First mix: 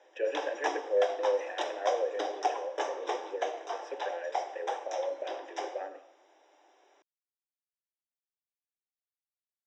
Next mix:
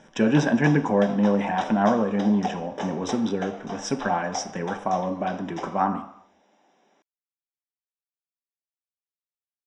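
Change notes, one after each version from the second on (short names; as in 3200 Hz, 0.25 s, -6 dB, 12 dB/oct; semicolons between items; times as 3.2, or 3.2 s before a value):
speech: remove vowel filter e; master: remove steep high-pass 310 Hz 72 dB/oct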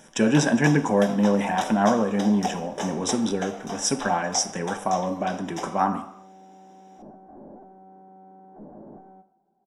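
second sound: unmuted; master: remove air absorption 150 m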